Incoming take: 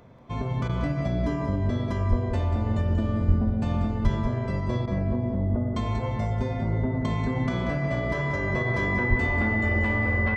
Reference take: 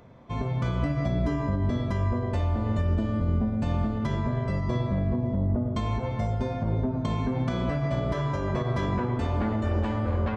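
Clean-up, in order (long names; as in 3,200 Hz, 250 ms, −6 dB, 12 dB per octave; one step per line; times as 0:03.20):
notch filter 2,000 Hz, Q 30
high-pass at the plosives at 0:02.09/0:03.27/0:04.03/0:09.09
repair the gap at 0:00.68/0:04.86, 12 ms
echo removal 186 ms −9.5 dB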